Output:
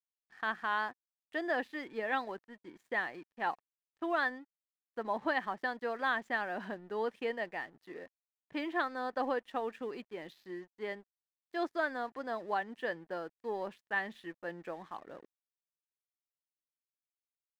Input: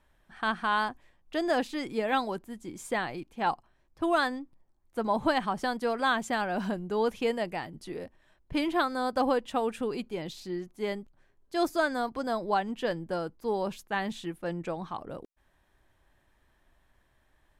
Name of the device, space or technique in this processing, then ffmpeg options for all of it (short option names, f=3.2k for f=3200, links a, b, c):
pocket radio on a weak battery: -af "highpass=270,lowpass=3.5k,aeval=exprs='sgn(val(0))*max(abs(val(0))-0.00178,0)':c=same,equalizer=f=1.8k:t=o:w=0.23:g=10.5,volume=-6.5dB"